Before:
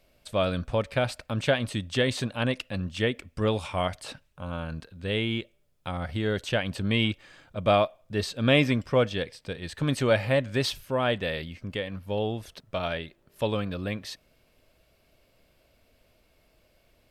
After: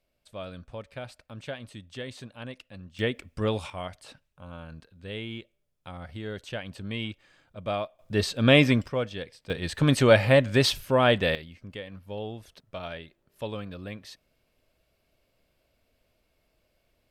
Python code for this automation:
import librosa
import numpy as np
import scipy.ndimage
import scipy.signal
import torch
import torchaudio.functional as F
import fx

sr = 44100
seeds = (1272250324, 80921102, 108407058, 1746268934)

y = fx.gain(x, sr, db=fx.steps((0.0, -13.0), (2.99, -1.5), (3.7, -8.5), (7.99, 3.0), (8.88, -6.0), (9.5, 5.0), (11.35, -7.0)))